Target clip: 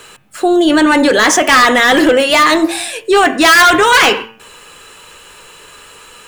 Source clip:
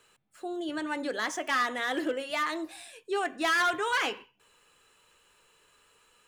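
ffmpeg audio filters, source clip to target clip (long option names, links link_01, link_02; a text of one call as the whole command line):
ffmpeg -i in.wav -af "apsyclip=30.5dB,bandreject=frequency=112.4:width_type=h:width=4,bandreject=frequency=224.8:width_type=h:width=4,bandreject=frequency=337.2:width_type=h:width=4,bandreject=frequency=449.6:width_type=h:width=4,bandreject=frequency=562:width_type=h:width=4,bandreject=frequency=674.4:width_type=h:width=4,bandreject=frequency=786.8:width_type=h:width=4,bandreject=frequency=899.2:width_type=h:width=4,bandreject=frequency=1011.6:width_type=h:width=4,bandreject=frequency=1124:width_type=h:width=4,bandreject=frequency=1236.4:width_type=h:width=4,bandreject=frequency=1348.8:width_type=h:width=4,bandreject=frequency=1461.2:width_type=h:width=4,bandreject=frequency=1573.6:width_type=h:width=4,bandreject=frequency=1686:width_type=h:width=4,bandreject=frequency=1798.4:width_type=h:width=4,bandreject=frequency=1910.8:width_type=h:width=4,bandreject=frequency=2023.2:width_type=h:width=4,bandreject=frequency=2135.6:width_type=h:width=4,bandreject=frequency=2248:width_type=h:width=4,bandreject=frequency=2360.4:width_type=h:width=4,bandreject=frequency=2472.8:width_type=h:width=4,bandreject=frequency=2585.2:width_type=h:width=4,bandreject=frequency=2697.6:width_type=h:width=4,bandreject=frequency=2810:width_type=h:width=4,bandreject=frequency=2922.4:width_type=h:width=4,bandreject=frequency=3034.8:width_type=h:width=4,volume=-4.5dB" out.wav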